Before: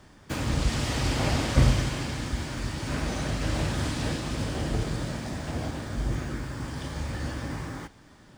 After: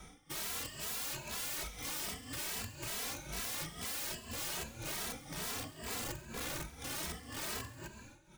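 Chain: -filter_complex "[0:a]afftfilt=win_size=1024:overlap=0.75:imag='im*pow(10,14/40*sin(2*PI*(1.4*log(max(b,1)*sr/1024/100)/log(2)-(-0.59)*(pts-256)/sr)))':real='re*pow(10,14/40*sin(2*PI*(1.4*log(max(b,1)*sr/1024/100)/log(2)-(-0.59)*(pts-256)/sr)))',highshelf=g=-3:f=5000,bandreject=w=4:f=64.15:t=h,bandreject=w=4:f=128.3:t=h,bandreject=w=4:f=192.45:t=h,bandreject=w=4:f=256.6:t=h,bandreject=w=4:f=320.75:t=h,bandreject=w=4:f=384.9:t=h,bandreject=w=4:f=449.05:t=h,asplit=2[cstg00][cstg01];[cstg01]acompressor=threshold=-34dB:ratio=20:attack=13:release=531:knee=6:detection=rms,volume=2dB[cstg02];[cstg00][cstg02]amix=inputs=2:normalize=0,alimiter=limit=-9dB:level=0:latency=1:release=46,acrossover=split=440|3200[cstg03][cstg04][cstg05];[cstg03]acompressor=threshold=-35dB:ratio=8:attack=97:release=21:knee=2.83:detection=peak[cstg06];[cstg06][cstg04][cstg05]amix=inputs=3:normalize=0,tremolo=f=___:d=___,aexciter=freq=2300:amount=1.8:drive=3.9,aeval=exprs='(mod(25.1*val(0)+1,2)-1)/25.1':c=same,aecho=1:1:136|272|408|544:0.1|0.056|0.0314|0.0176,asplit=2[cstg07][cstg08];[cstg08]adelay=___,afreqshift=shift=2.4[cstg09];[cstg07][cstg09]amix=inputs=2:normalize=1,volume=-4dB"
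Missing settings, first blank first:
2, 0.88, 2.7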